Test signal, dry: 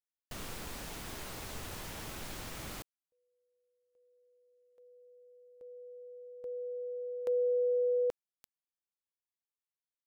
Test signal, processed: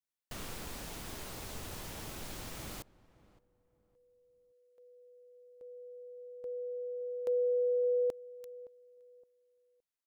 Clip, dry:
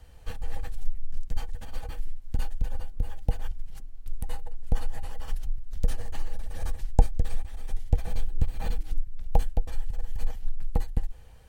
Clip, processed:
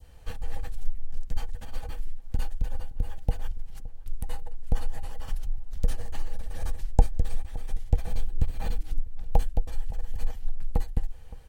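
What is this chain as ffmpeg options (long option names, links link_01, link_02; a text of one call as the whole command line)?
ffmpeg -i in.wav -filter_complex "[0:a]adynamicequalizer=threshold=0.00316:dfrequency=1700:dqfactor=0.73:tfrequency=1700:tqfactor=0.73:attack=5:release=100:ratio=0.375:range=3:mode=cutabove:tftype=bell,asplit=2[link_01][link_02];[link_02]adelay=567,lowpass=frequency=1200:poles=1,volume=-19dB,asplit=2[link_03][link_04];[link_04]adelay=567,lowpass=frequency=1200:poles=1,volume=0.3,asplit=2[link_05][link_06];[link_06]adelay=567,lowpass=frequency=1200:poles=1,volume=0.3[link_07];[link_03][link_05][link_07]amix=inputs=3:normalize=0[link_08];[link_01][link_08]amix=inputs=2:normalize=0" out.wav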